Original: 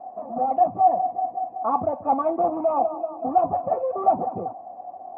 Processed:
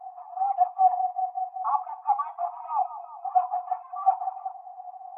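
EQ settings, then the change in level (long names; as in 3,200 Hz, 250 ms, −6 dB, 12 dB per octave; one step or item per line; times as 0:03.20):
linear-phase brick-wall high-pass 700 Hz
−2.0 dB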